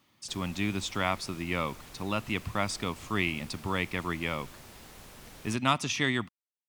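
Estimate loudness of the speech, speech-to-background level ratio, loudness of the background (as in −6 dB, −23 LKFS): −31.5 LKFS, 18.0 dB, −49.5 LKFS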